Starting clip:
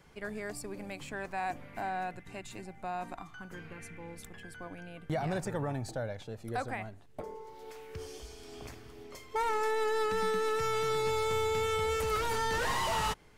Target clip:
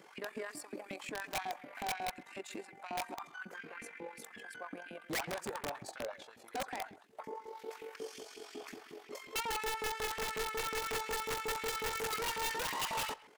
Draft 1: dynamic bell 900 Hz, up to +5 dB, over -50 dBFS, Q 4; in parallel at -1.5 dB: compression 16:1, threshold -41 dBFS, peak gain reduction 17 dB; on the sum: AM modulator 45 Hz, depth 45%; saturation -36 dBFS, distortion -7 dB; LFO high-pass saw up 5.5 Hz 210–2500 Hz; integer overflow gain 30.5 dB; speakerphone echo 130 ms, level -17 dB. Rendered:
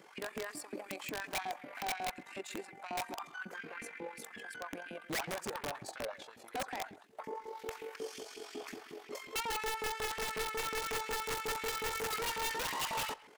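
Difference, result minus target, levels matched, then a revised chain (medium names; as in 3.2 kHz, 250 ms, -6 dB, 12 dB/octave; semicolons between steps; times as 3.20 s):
compression: peak gain reduction -11 dB
dynamic bell 900 Hz, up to +5 dB, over -50 dBFS, Q 4; in parallel at -1.5 dB: compression 16:1, threshold -52.5 dBFS, peak gain reduction 27.5 dB; on the sum: AM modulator 45 Hz, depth 45%; saturation -36 dBFS, distortion -8 dB; LFO high-pass saw up 5.5 Hz 210–2500 Hz; integer overflow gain 30.5 dB; speakerphone echo 130 ms, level -17 dB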